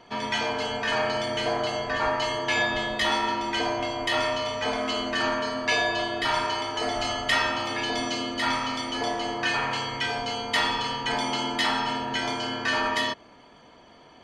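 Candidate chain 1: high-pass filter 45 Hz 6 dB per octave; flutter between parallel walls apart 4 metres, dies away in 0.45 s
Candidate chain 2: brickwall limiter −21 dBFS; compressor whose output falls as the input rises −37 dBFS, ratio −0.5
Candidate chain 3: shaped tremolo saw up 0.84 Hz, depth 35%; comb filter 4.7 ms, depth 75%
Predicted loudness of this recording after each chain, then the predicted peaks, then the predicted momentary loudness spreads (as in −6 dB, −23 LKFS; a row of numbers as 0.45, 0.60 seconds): −23.5, −39.5, −25.5 LKFS; −7.5, −23.0, −10.0 dBFS; 4, 3, 5 LU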